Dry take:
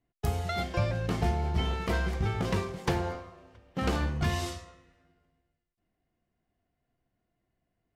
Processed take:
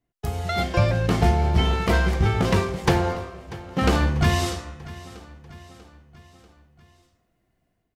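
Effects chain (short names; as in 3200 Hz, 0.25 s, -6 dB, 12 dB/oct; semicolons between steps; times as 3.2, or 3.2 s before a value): AGC gain up to 9 dB; on a send: feedback echo 0.641 s, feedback 53%, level -18.5 dB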